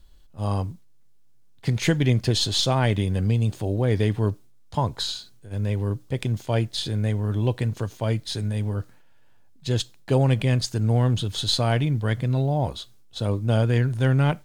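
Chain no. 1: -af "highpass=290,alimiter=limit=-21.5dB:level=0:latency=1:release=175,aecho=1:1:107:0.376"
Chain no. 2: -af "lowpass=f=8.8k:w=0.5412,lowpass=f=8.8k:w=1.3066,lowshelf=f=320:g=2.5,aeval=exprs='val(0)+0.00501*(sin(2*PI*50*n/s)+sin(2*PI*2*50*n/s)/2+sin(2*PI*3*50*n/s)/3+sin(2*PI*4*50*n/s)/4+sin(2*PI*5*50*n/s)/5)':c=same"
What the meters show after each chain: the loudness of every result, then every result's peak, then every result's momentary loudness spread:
-33.5, -22.5 LUFS; -19.0, -6.5 dBFS; 8, 10 LU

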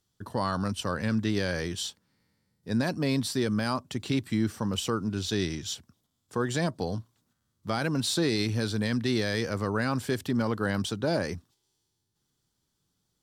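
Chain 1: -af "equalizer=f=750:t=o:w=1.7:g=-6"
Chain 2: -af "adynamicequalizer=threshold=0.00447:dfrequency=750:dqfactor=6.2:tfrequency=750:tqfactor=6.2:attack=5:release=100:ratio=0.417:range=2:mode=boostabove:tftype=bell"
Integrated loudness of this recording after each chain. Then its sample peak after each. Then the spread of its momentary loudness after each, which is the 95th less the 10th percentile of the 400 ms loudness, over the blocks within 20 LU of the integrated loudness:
-31.0, -29.5 LUFS; -17.0, -15.5 dBFS; 8, 8 LU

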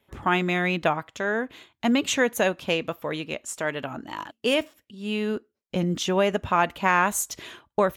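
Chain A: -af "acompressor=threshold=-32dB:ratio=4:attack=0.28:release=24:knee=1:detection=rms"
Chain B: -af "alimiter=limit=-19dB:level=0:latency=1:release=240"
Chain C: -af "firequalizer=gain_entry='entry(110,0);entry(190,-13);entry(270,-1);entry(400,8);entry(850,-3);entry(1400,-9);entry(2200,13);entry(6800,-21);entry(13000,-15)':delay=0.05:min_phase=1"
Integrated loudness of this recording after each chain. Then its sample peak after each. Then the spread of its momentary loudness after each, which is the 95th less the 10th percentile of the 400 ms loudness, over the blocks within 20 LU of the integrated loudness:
-37.5, -31.5, -21.0 LUFS; -25.0, -19.0, -3.0 dBFS; 6, 8, 16 LU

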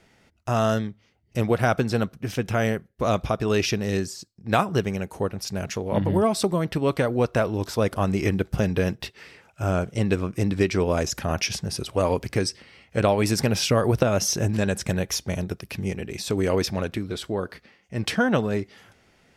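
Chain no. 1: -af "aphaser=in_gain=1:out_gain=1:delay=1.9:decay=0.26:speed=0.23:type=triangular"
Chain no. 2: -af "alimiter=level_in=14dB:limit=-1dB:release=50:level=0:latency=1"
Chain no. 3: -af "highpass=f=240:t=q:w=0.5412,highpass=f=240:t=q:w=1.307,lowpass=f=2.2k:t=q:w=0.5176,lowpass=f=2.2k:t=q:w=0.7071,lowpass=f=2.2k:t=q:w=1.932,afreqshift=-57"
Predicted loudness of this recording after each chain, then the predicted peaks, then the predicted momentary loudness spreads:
-24.5, -13.0, -27.5 LUFS; -6.0, -1.0, -7.5 dBFS; 9, 6, 12 LU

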